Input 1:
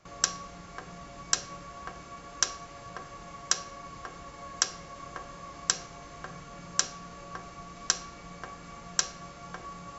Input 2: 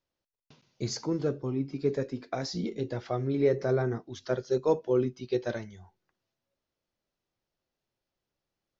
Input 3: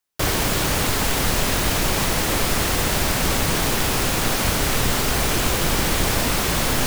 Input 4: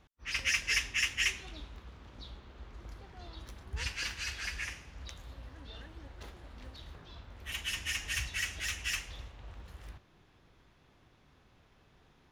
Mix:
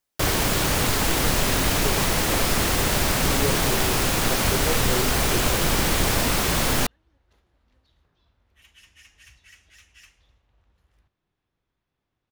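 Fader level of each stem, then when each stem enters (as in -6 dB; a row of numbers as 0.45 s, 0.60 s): mute, -4.5 dB, -1.0 dB, -17.0 dB; mute, 0.00 s, 0.00 s, 1.10 s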